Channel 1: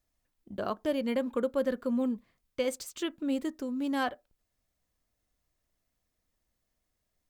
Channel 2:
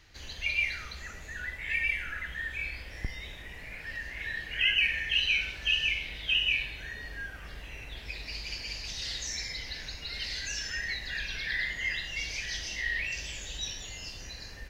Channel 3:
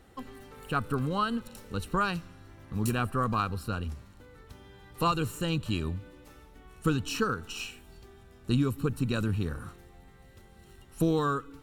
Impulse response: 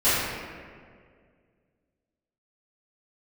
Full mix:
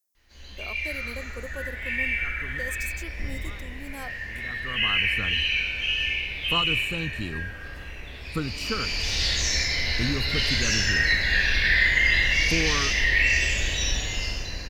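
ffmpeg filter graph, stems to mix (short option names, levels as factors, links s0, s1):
-filter_complex "[0:a]highpass=260,aexciter=amount=2.6:drive=8.7:freq=5100,volume=0.355,asplit=2[s0][s1];[1:a]dynaudnorm=f=150:g=9:m=2,adelay=150,volume=0.531,afade=t=in:st=8.43:d=0.58:silence=0.334965,asplit=2[s2][s3];[s3]volume=0.501[s4];[2:a]adelay=1500,volume=0.75[s5];[s1]apad=whole_len=578742[s6];[s5][s6]sidechaincompress=threshold=0.00112:ratio=8:attack=16:release=595[s7];[3:a]atrim=start_sample=2205[s8];[s4][s8]afir=irnorm=-1:irlink=0[s9];[s0][s2][s7][s9]amix=inputs=4:normalize=0"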